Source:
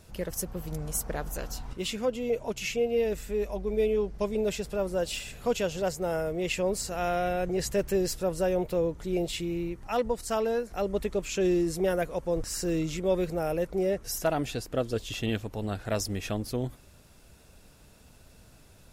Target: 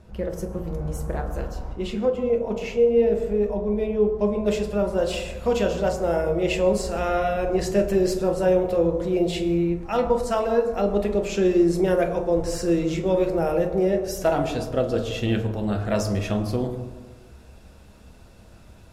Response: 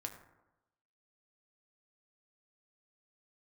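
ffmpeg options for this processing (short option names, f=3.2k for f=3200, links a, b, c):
-filter_complex "[0:a]asetnsamples=n=441:p=0,asendcmd='4.46 lowpass f 3900',lowpass=f=1.2k:p=1[a];[1:a]atrim=start_sample=2205,asetrate=29547,aresample=44100[b];[a][b]afir=irnorm=-1:irlink=0,volume=6dB"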